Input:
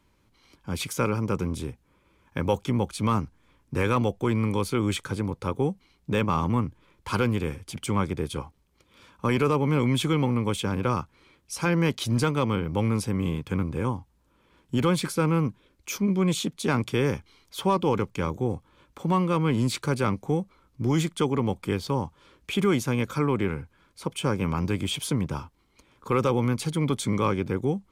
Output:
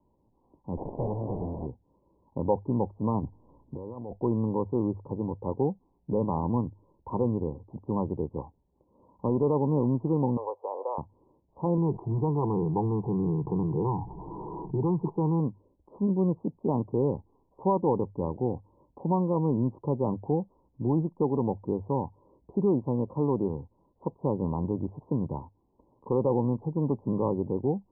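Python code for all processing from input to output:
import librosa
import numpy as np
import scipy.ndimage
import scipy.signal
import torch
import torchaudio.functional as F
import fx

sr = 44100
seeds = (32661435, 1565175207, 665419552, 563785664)

y = fx.chain(x, sr, fx.delta_mod(bps=16000, step_db=-23.0),
    fx.low_shelf(hz=480.0, db=-5.5),
    fx.running_max(window=33), at=(0.77, 1.66))
y = fx.chain(y, sr, fx.over_compress(threshold_db=-34.0, ratio=-1.0),
    fx.transient(attack_db=-5, sustain_db=-1), at=(3.23, 4.13))
y = fx.chain(y, sr, fx.steep_highpass(hz=500.0, slope=36),
    fx.env_flatten(amount_pct=50), at=(10.37, 10.98))
y = fx.chain(y, sr, fx.fixed_phaser(hz=370.0, stages=8),
    fx.env_flatten(amount_pct=70), at=(11.77, 15.4))
y = scipy.signal.sosfilt(scipy.signal.butter(16, 1000.0, 'lowpass', fs=sr, output='sos'), y)
y = fx.low_shelf(y, sr, hz=160.0, db=-5.5)
y = fx.hum_notches(y, sr, base_hz=50, count=2)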